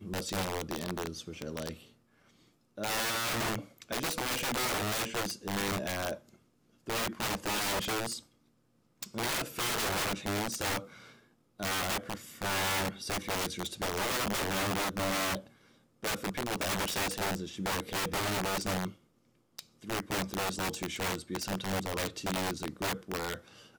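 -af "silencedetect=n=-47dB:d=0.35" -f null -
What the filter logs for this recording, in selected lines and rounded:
silence_start: 1.84
silence_end: 2.77 | silence_duration: 0.94
silence_start: 6.34
silence_end: 6.87 | silence_duration: 0.54
silence_start: 8.20
silence_end: 9.02 | silence_duration: 0.82
silence_start: 11.12
silence_end: 11.60 | silence_duration: 0.47
silence_start: 15.47
silence_end: 16.03 | silence_duration: 0.56
silence_start: 18.94
silence_end: 19.59 | silence_duration: 0.65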